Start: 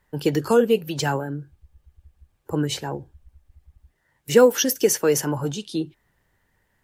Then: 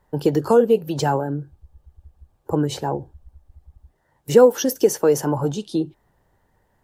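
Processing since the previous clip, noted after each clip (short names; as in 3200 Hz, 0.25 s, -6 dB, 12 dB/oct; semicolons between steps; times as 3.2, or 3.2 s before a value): EQ curve 230 Hz 0 dB, 820 Hz +4 dB, 2200 Hz -10 dB, 3900 Hz -6 dB; in parallel at 0 dB: compressor, threshold -24 dBFS, peak gain reduction 16 dB; on the sum: gain -1.5 dB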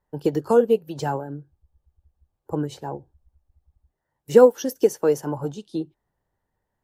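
upward expander 1.5:1, over -36 dBFS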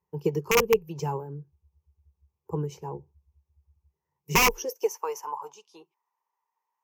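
high-pass sweep 91 Hz -> 950 Hz, 4.12–4.94; wrapped overs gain 8 dB; ripple EQ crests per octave 0.78, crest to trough 14 dB; gain -8 dB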